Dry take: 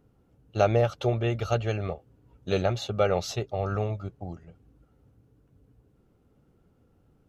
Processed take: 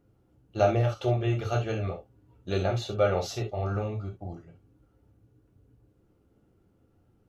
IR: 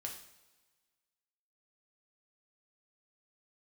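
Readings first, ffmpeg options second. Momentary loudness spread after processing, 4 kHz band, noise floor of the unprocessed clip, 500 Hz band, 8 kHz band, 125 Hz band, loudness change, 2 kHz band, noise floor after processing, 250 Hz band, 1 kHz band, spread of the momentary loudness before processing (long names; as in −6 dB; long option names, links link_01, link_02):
16 LU, −2.5 dB, −65 dBFS, −1.5 dB, can't be measured, +0.5 dB, −1.0 dB, −1.5 dB, −67 dBFS, −0.5 dB, −1.0 dB, 17 LU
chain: -filter_complex "[0:a]equalizer=frequency=310:width_type=o:width=0.86:gain=3[link_01];[1:a]atrim=start_sample=2205,afade=type=out:start_time=0.13:duration=0.01,atrim=end_sample=6174[link_02];[link_01][link_02]afir=irnorm=-1:irlink=0"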